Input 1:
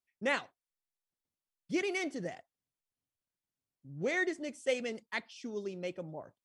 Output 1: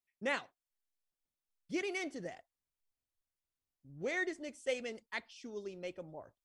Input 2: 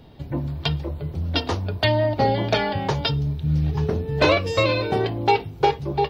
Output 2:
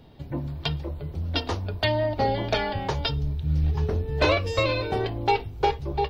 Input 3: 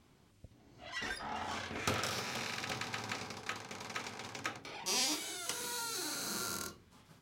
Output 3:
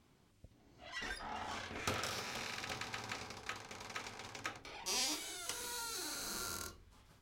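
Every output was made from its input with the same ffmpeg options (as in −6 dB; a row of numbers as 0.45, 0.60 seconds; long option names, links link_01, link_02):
-af "asubboost=boost=9:cutoff=52,volume=-3.5dB"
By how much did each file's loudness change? −4.0, −3.5, −3.5 LU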